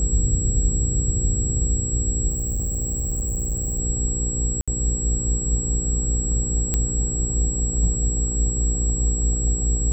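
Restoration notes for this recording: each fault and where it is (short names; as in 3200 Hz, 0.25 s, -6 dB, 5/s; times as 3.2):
hum 60 Hz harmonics 8 -27 dBFS
tone 7700 Hz -26 dBFS
2.29–3.8 clipped -21 dBFS
4.61–4.68 gap 66 ms
6.74 pop -7 dBFS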